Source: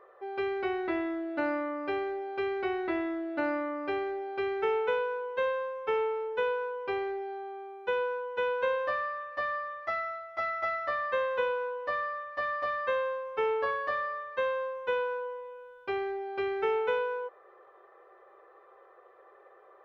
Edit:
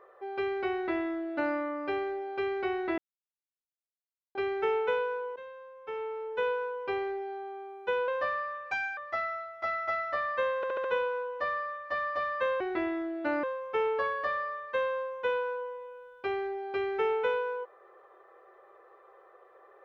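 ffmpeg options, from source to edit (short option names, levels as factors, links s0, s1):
-filter_complex "[0:a]asplit=13[s0][s1][s2][s3][s4][s5][s6][s7][s8][s9][s10][s11][s12];[s0]atrim=end=2.98,asetpts=PTS-STARTPTS,afade=t=out:st=2.976:d=0.004:c=hsin[s13];[s1]atrim=start=2.98:end=4.35,asetpts=PTS-STARTPTS,volume=0[s14];[s2]atrim=start=4.35:end=5.36,asetpts=PTS-STARTPTS,afade=t=in:d=0.004:c=hsin,afade=t=out:st=1.006:d=0.004:c=hsin:silence=0.149624[s15];[s3]atrim=start=5.36:end=8.082,asetpts=PTS-STARTPTS,afade=t=in:d=1.1:c=qua:silence=0.149624[s16];[s4]atrim=start=8.738:end=9.374[s17];[s5]atrim=start=9.37:end=9.72,asetpts=PTS-STARTPTS,asetrate=58653,aresample=44100,atrim=end_sample=11605,asetpts=PTS-STARTPTS[s18];[s6]atrim=start=9.716:end=11.382[s19];[s7]atrim=start=11.308:end=11.382[s20];[s8]atrim=start=11.308:end=11.382[s21];[s9]atrim=start=11.308:end=11.382[s22];[s10]atrim=start=11.308:end=13.072[s23];[s11]atrim=start=0.728:end=1.562[s24];[s12]atrim=start=13.068[s25];[s13][s14][s15][s16]concat=n=4:v=0:a=1[s26];[s26][s17]acrossfade=d=0.004:c1=hsin:c2=hsin[s27];[s27][s18]acrossfade=d=0.004:c1=hsin:c2=hsin[s28];[s28][s19]acrossfade=d=0.004:c1=hsin:c2=hsin[s29];[s29][s20]acrossfade=d=0.004:c1=hsin:c2=hsin[s30];[s30][s21]acrossfade=d=0.004:c1=hsin:c2=hsin[s31];[s31][s22]acrossfade=d=0.004:c1=hsin:c2=hsin[s32];[s32][s23]acrossfade=d=0.004:c1=hsin:c2=hsin[s33];[s33][s24]acrossfade=d=0.004:c1=hsin:c2=hsin[s34];[s34][s25]acrossfade=d=0.004:c1=hsin:c2=hsin"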